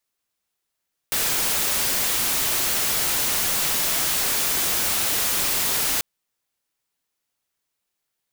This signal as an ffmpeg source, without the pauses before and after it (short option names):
-f lavfi -i "anoisesrc=c=white:a=0.13:d=4.89:r=44100:seed=1"